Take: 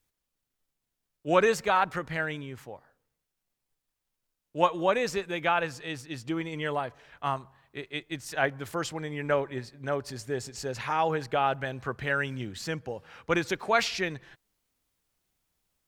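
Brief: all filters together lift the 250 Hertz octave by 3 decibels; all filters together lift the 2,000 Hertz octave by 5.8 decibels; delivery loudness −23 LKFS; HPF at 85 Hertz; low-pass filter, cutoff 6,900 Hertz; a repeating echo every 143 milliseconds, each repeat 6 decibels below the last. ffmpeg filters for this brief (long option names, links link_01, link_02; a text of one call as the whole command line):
ffmpeg -i in.wav -af "highpass=85,lowpass=6900,equalizer=frequency=250:width_type=o:gain=4.5,equalizer=frequency=2000:width_type=o:gain=7.5,aecho=1:1:143|286|429|572|715|858:0.501|0.251|0.125|0.0626|0.0313|0.0157,volume=3dB" out.wav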